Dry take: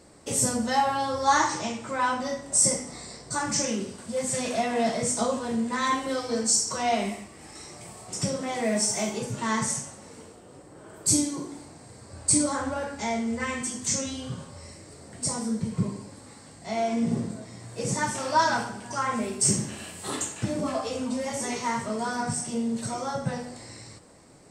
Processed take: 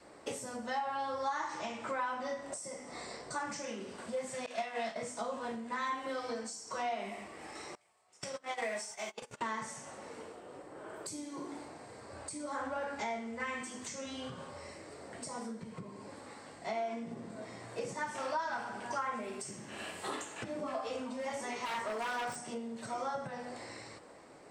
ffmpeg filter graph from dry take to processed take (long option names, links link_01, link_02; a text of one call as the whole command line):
ffmpeg -i in.wav -filter_complex "[0:a]asettb=1/sr,asplit=3[link_01][link_02][link_03];[link_01]atrim=end=4.464[link_04];[link_02]atrim=start=4.46:end=4.96,asetpts=PTS-STARTPTS,afade=type=in:duration=0.004:curve=qsin,afade=type=out:start_time=0.496:duration=0.004:curve=qsin,agate=range=-33dB:threshold=-21dB:ratio=3:release=100:detection=peak,equalizer=frequency=4400:width=0.3:gain=8.5,asplit=2[link_05][link_06];[link_06]adelay=27,volume=-5.5dB[link_07];[link_05][link_07]amix=inputs=2:normalize=0,atrim=end_sample=22050[link_08];[link_03]atrim=start=4.956[link_09];[link_04][link_08]acrossfade=duration=0.004:curve1=hsin:curve2=qsin[link_10];[link_10][link_09]acrossfade=duration=0.004:curve1=qsin:curve2=hsin,asettb=1/sr,asplit=3[link_11][link_12][link_13];[link_11]atrim=end=7.754[link_14];[link_12]atrim=start=7.75:end=9.41,asetpts=PTS-STARTPTS,afade=type=in:duration=0.004:curve=qsin,afade=type=out:start_time=1.656:duration=0.004:curve=qsin,agate=range=-27dB:threshold=-30dB:ratio=16:release=100:detection=peak,equalizer=frequency=210:width=0.34:gain=-12.5,acontrast=36[link_15];[link_13]atrim=start=9.406[link_16];[link_14][link_15]acrossfade=duration=0.004:curve1=hsin:curve2=qsin[link_17];[link_17][link_16]acrossfade=duration=0.004:curve1=qsin:curve2=hsin,asettb=1/sr,asplit=3[link_18][link_19][link_20];[link_18]atrim=end=21.654[link_21];[link_19]atrim=start=21.65:end=22.36,asetpts=PTS-STARTPTS,afade=type=in:duration=0.004:curve=qsin,afade=type=out:start_time=0.706:duration=0.004:curve=qsin,equalizer=frequency=160:width=0.68:gain=-8.5,aeval=exprs='0.0355*(abs(mod(val(0)/0.0355+3,4)-2)-1)':channel_layout=same[link_22];[link_20]atrim=start=22.356[link_23];[link_21][link_22]acrossfade=duration=0.004:curve1=hsin:curve2=qsin[link_24];[link_24][link_23]acrossfade=duration=0.004:curve1=qsin:curve2=hsin,adynamicequalizer=threshold=0.00891:dfrequency=430:dqfactor=2.1:tfrequency=430:tqfactor=2.1:attack=5:release=100:ratio=0.375:range=2:mode=cutabove:tftype=bell,acompressor=threshold=-34dB:ratio=10,bass=frequency=250:gain=-14,treble=frequency=4000:gain=-12,volume=2dB" out.wav